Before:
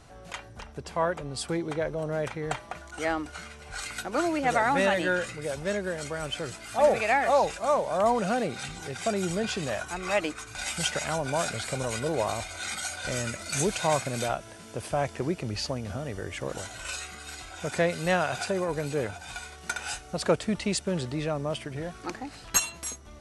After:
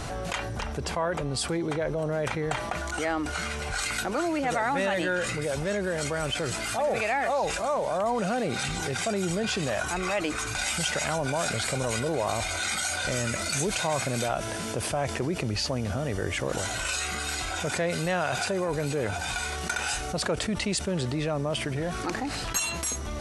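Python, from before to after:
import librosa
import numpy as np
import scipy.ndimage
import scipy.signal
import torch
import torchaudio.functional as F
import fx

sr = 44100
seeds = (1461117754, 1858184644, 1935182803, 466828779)

y = fx.env_flatten(x, sr, amount_pct=70)
y = y * librosa.db_to_amplitude(-7.5)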